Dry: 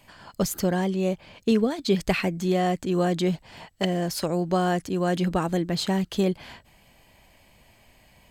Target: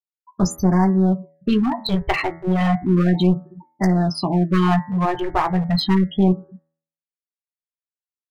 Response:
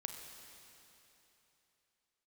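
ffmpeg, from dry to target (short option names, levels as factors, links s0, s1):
-filter_complex "[0:a]asplit=2[s0][s1];[1:a]atrim=start_sample=2205,lowpass=4100[s2];[s1][s2]afir=irnorm=-1:irlink=0,volume=0.266[s3];[s0][s3]amix=inputs=2:normalize=0,afftfilt=real='re*gte(hypot(re,im),0.0631)':imag='im*gte(hypot(re,im),0.0631)':win_size=1024:overlap=0.75,aecho=1:1:1:0.97,aecho=1:1:16|28:0.398|0.15,adynamicequalizer=threshold=0.0251:dfrequency=860:dqfactor=0.79:tfrequency=860:tqfactor=0.79:attack=5:release=100:ratio=0.375:range=2:mode=boostabove:tftype=bell,aeval=exprs='clip(val(0),-1,0.106)':c=same,bandreject=f=80.67:t=h:w=4,bandreject=f=161.34:t=h:w=4,bandreject=f=242.01:t=h:w=4,bandreject=f=322.68:t=h:w=4,bandreject=f=403.35:t=h:w=4,bandreject=f=484.02:t=h:w=4,bandreject=f=564.69:t=h:w=4,bandreject=f=645.36:t=h:w=4,bandreject=f=726.03:t=h:w=4,bandreject=f=806.7:t=h:w=4,bandreject=f=887.37:t=h:w=4,bandreject=f=968.04:t=h:w=4,bandreject=f=1048.71:t=h:w=4,bandreject=f=1129.38:t=h:w=4,bandreject=f=1210.05:t=h:w=4,bandreject=f=1290.72:t=h:w=4,bandreject=f=1371.39:t=h:w=4,bandreject=f=1452.06:t=h:w=4,bandreject=f=1532.73:t=h:w=4,bandreject=f=1613.4:t=h:w=4,bandreject=f=1694.07:t=h:w=4,bandreject=f=1774.74:t=h:w=4,bandreject=f=1855.41:t=h:w=4,bandreject=f=1936.08:t=h:w=4,bandreject=f=2016.75:t=h:w=4,bandreject=f=2097.42:t=h:w=4,bandreject=f=2178.09:t=h:w=4,afftfilt=real='re*(1-between(b*sr/1024,210*pow(3200/210,0.5+0.5*sin(2*PI*0.33*pts/sr))/1.41,210*pow(3200/210,0.5+0.5*sin(2*PI*0.33*pts/sr))*1.41))':imag='im*(1-between(b*sr/1024,210*pow(3200/210,0.5+0.5*sin(2*PI*0.33*pts/sr))/1.41,210*pow(3200/210,0.5+0.5*sin(2*PI*0.33*pts/sr))*1.41))':win_size=1024:overlap=0.75,volume=1.33"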